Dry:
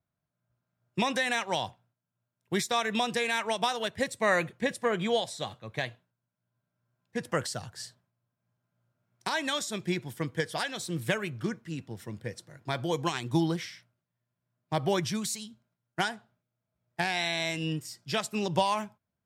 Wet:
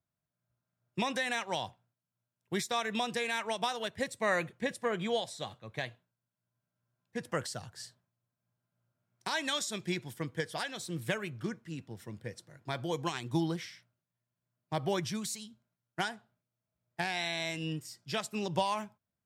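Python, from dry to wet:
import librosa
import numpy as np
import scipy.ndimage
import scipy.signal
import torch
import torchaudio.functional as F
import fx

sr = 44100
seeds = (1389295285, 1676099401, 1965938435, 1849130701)

y = fx.peak_eq(x, sr, hz=5600.0, db=4.0, octaves=2.9, at=(9.29, 10.14))
y = y * 10.0 ** (-4.5 / 20.0)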